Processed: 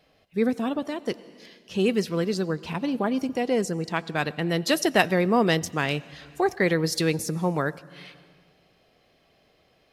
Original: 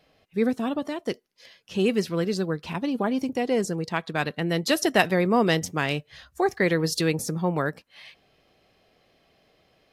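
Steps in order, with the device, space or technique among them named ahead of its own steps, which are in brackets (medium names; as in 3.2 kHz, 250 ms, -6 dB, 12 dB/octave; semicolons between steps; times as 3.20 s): compressed reverb return (on a send at -13.5 dB: reverberation RT60 1.5 s, pre-delay 84 ms + compression, threshold -29 dBFS, peak gain reduction 12 dB)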